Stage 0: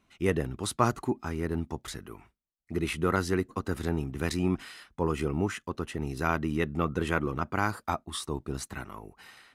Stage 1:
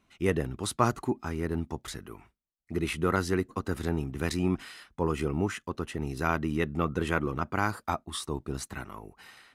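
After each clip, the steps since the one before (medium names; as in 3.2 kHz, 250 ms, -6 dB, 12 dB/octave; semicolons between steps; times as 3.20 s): no audible change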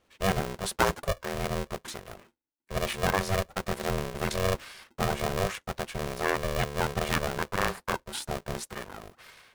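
polarity switched at an audio rate 290 Hz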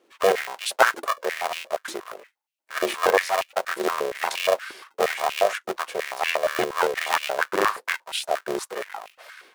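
step-sequenced high-pass 8.5 Hz 350–2600 Hz; trim +3 dB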